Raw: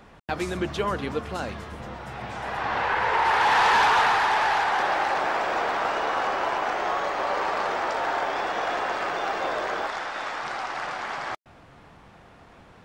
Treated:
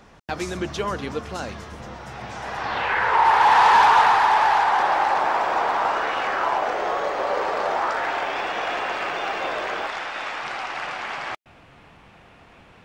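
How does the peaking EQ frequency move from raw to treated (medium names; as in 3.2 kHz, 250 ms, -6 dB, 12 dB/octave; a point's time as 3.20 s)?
peaking EQ +7 dB 0.7 oct
2.61 s 5.9 kHz
3.19 s 930 Hz
5.93 s 930 Hz
6.16 s 3.1 kHz
6.70 s 490 Hz
7.61 s 490 Hz
8.12 s 2.6 kHz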